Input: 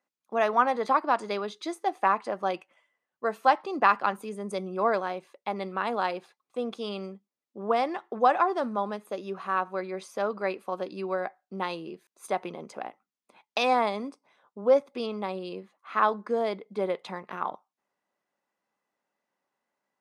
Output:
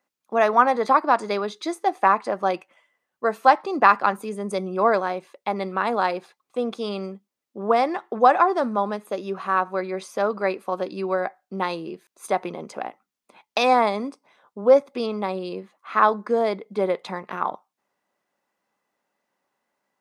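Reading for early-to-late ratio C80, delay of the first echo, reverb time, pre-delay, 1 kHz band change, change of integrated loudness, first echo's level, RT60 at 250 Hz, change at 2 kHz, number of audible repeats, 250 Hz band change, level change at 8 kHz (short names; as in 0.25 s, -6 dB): none, none, none, none, +6.0 dB, +6.0 dB, none, none, +5.5 dB, none, +6.0 dB, +6.0 dB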